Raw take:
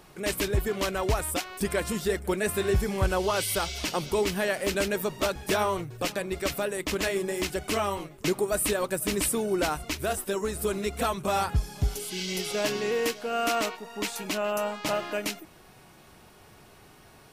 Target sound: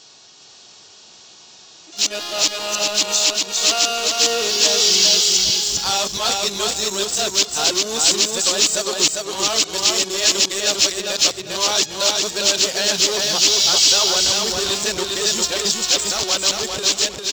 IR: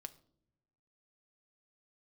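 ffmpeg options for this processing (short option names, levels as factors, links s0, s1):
-filter_complex "[0:a]areverse,aemphasis=mode=production:type=cd,bandreject=f=2100:w=29,aresample=16000,asoftclip=type=tanh:threshold=0.0473,aresample=44100,highpass=f=440:p=1,highshelf=f=2800:t=q:w=1.5:g=9.5,asplit=2[s0][s1];[s1]acrusher=bits=4:mix=0:aa=0.5,volume=0.596[s2];[s0][s2]amix=inputs=2:normalize=0,aecho=1:1:400|800|1200|1600:0.708|0.184|0.0479|0.0124,dynaudnorm=f=380:g=13:m=1.58,volume=1.26"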